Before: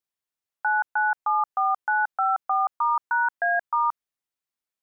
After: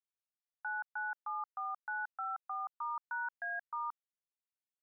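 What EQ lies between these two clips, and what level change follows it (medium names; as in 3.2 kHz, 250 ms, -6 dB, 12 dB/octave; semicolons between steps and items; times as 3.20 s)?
high-pass 670 Hz; low-pass 1.6 kHz 12 dB/octave; differentiator; +2.0 dB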